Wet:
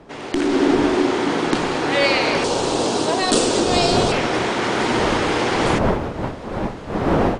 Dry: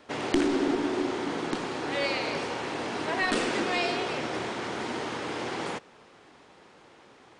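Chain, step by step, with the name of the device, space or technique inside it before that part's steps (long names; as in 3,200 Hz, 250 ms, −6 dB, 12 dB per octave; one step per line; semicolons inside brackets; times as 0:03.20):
0:02.44–0:04.12: graphic EQ with 10 bands 500 Hz +3 dB, 2,000 Hz −12 dB, 4,000 Hz +4 dB, 8,000 Hz +9 dB
smartphone video outdoors (wind on the microphone 580 Hz −38 dBFS; automatic gain control gain up to 15.5 dB; level −1.5 dB; AAC 96 kbit/s 32,000 Hz)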